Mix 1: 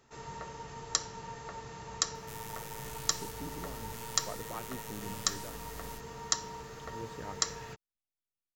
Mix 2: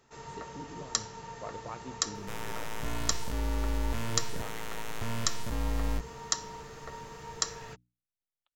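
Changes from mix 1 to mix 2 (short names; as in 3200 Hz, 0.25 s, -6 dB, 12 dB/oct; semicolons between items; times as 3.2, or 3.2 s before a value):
speech: entry -2.85 s; second sound: remove pre-emphasis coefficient 0.9; master: add notches 60/120/180/240/300 Hz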